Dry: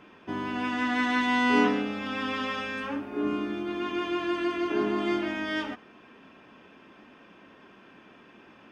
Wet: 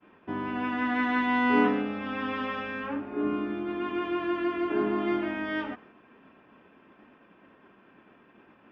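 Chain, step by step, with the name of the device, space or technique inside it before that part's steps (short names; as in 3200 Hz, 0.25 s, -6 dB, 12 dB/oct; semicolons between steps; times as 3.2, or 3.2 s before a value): hearing-loss simulation (LPF 2300 Hz 12 dB/oct; expander -49 dBFS)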